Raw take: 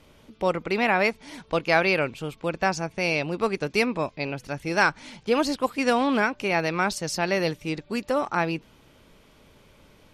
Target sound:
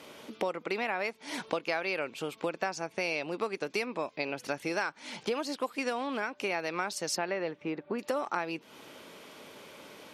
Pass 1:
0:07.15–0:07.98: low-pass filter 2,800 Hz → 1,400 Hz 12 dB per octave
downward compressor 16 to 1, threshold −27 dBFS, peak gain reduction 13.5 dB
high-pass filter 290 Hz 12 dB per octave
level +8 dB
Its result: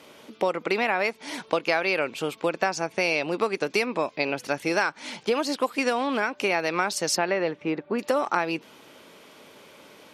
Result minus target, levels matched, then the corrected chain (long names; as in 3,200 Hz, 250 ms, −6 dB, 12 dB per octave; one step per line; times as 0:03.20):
downward compressor: peak gain reduction −8 dB
0:07.15–0:07.98: low-pass filter 2,800 Hz → 1,400 Hz 12 dB per octave
downward compressor 16 to 1, threshold −35.5 dBFS, peak gain reduction 21.5 dB
high-pass filter 290 Hz 12 dB per octave
level +8 dB